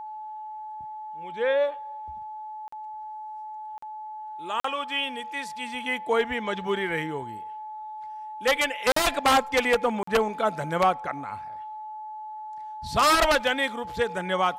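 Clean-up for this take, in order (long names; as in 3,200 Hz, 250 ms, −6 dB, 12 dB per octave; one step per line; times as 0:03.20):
notch filter 860 Hz, Q 30
repair the gap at 0:02.68/0:03.78/0:04.60/0:08.92/0:10.03, 44 ms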